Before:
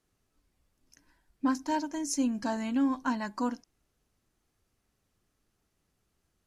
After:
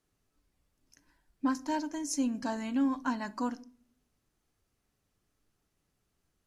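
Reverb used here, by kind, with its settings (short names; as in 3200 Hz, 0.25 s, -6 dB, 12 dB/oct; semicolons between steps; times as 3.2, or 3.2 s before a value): shoebox room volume 580 m³, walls furnished, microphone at 0.33 m; gain -2 dB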